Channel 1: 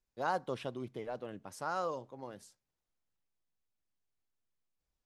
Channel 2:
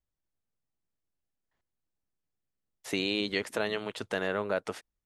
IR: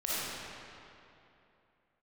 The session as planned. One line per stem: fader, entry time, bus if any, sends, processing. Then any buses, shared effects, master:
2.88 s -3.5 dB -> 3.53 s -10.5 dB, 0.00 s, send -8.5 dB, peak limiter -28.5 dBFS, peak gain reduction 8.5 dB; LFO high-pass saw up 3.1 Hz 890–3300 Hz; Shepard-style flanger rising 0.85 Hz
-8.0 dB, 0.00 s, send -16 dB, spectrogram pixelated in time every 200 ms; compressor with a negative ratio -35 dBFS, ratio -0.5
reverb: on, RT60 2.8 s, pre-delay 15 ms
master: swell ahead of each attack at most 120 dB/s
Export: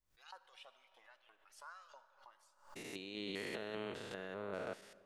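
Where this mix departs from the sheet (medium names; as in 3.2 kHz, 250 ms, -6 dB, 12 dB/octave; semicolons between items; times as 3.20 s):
stem 1 -3.5 dB -> -10.5 dB; reverb return -9.5 dB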